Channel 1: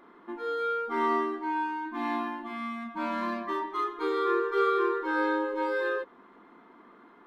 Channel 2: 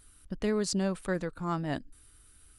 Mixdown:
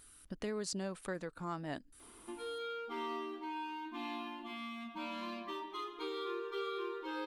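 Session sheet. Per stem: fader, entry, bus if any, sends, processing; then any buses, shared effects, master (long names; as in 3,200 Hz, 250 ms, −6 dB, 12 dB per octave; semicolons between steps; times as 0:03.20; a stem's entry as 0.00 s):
−5.5 dB, 2.00 s, no send, high shelf with overshoot 2,200 Hz +6.5 dB, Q 3
+1.0 dB, 0.00 s, no send, low-shelf EQ 150 Hz −11.5 dB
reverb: not used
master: downward compressor 2 to 1, threshold −43 dBFS, peak gain reduction 9.5 dB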